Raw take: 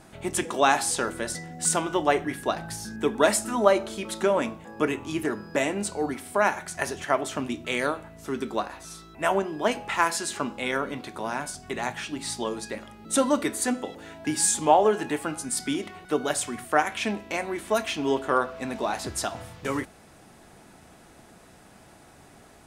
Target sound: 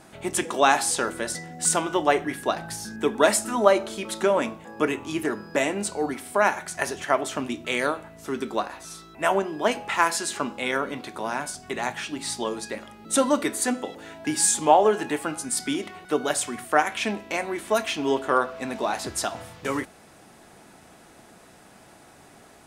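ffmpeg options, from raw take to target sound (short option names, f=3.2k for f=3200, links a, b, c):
-af "lowshelf=f=120:g=-8.5,volume=2dB"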